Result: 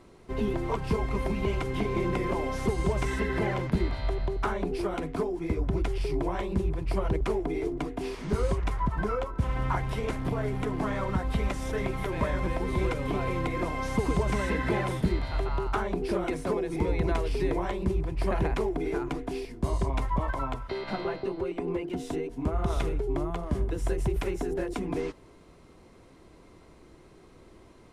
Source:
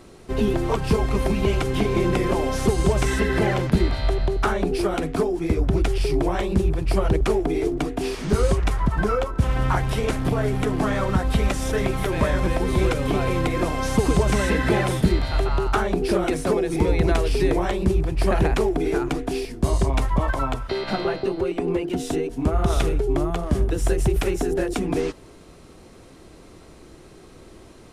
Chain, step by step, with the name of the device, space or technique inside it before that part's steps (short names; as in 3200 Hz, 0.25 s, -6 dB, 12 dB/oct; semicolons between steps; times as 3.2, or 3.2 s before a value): inside a helmet (high shelf 3900 Hz -6 dB; small resonant body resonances 1000/2100 Hz, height 8 dB); gain -7.5 dB